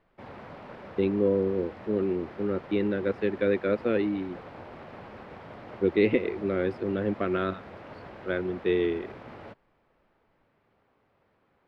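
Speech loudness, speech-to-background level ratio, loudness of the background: -28.0 LUFS, 16.5 dB, -44.5 LUFS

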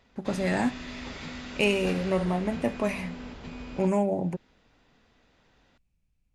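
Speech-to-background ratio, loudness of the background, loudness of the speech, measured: 12.0 dB, -40.0 LUFS, -28.0 LUFS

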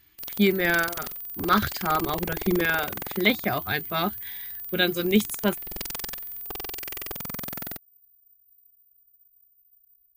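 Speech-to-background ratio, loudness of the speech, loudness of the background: 7.0 dB, -25.5 LUFS, -32.5 LUFS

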